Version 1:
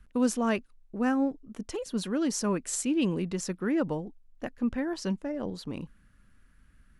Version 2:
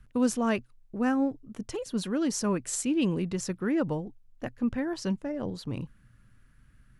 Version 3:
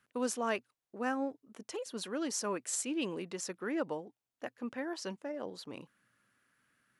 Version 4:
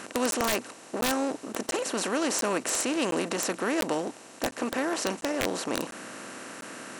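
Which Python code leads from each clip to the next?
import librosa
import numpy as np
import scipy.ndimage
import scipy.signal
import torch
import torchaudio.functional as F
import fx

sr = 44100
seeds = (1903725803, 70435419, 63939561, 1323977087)

y1 = fx.peak_eq(x, sr, hz=120.0, db=14.5, octaves=0.33)
y2 = scipy.signal.sosfilt(scipy.signal.butter(2, 400.0, 'highpass', fs=sr, output='sos'), y1)
y2 = y2 * librosa.db_to_amplitude(-3.0)
y3 = fx.bin_compress(y2, sr, power=0.4)
y3 = (np.mod(10.0 ** (19.0 / 20.0) * y3 + 1.0, 2.0) - 1.0) / 10.0 ** (19.0 / 20.0)
y3 = fx.buffer_crackle(y3, sr, first_s=0.31, period_s=0.7, block=512, kind='zero')
y3 = y3 * librosa.db_to_amplitude(3.5)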